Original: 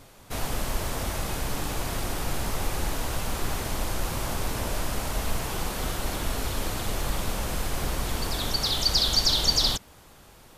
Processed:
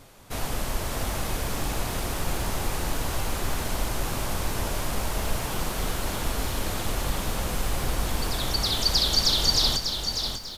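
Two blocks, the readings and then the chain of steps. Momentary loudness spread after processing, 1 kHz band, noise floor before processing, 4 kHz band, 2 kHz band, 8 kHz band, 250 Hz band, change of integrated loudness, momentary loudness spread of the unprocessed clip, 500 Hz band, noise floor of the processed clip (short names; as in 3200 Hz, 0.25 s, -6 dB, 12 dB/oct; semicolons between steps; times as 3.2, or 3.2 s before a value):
10 LU, +1.0 dB, -52 dBFS, +1.0 dB, +1.0 dB, +1.0 dB, +1.0 dB, +1.0 dB, 10 LU, +1.0 dB, -33 dBFS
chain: feedback echo 0.593 s, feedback 31%, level -7 dB; lo-fi delay 0.615 s, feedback 35%, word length 7-bit, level -14 dB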